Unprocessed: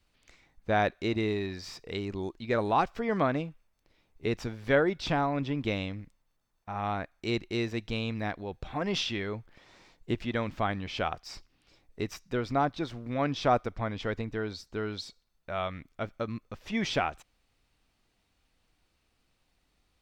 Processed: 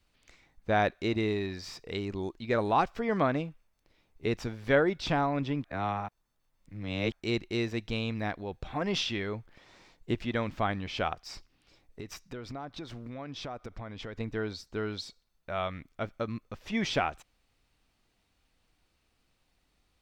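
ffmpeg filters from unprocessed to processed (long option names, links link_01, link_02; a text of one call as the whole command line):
ffmpeg -i in.wav -filter_complex "[0:a]asplit=3[link_01][link_02][link_03];[link_01]afade=type=out:start_time=11.13:duration=0.02[link_04];[link_02]acompressor=threshold=-37dB:ratio=6:attack=3.2:release=140:knee=1:detection=peak,afade=type=in:start_time=11.13:duration=0.02,afade=type=out:start_time=14.19:duration=0.02[link_05];[link_03]afade=type=in:start_time=14.19:duration=0.02[link_06];[link_04][link_05][link_06]amix=inputs=3:normalize=0,asplit=3[link_07][link_08][link_09];[link_07]atrim=end=5.642[link_10];[link_08]atrim=start=5.638:end=7.122,asetpts=PTS-STARTPTS,areverse[link_11];[link_09]atrim=start=7.118[link_12];[link_10][link_11]acrossfade=duration=0.004:curve1=hsin:curve2=hsin[link_13];[link_13][link_12]acrossfade=duration=0.004:curve1=hsin:curve2=hsin" out.wav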